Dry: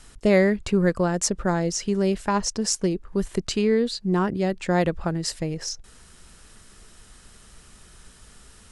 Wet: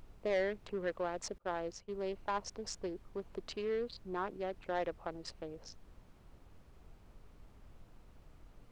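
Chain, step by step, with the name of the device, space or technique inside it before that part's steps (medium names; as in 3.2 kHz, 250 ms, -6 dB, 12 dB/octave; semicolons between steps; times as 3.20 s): local Wiener filter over 25 samples; aircraft cabin announcement (band-pass 500–3600 Hz; saturation -17.5 dBFS, distortion -16 dB; brown noise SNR 14 dB); 1.38–2.08 s: expander -34 dBFS; trim -8 dB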